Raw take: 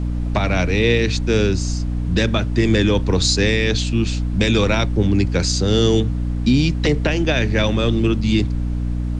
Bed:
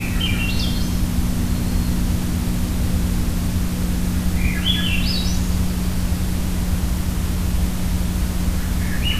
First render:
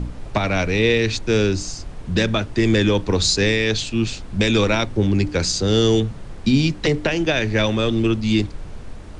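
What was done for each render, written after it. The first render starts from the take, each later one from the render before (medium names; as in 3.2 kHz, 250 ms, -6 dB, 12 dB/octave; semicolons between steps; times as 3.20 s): de-hum 60 Hz, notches 5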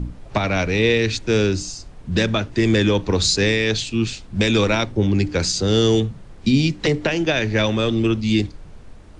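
noise print and reduce 7 dB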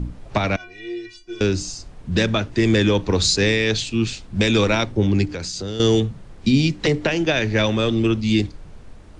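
0.56–1.41 s: inharmonic resonator 350 Hz, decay 0.4 s, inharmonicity 0.008; 5.25–5.80 s: compression 5:1, threshold -26 dBFS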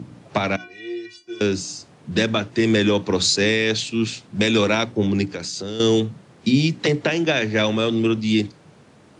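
high-pass 120 Hz 24 dB/octave; hum notches 60/120/180/240/300 Hz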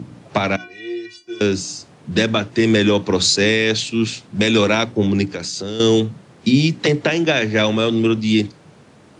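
trim +3 dB; peak limiter -3 dBFS, peak gain reduction 1 dB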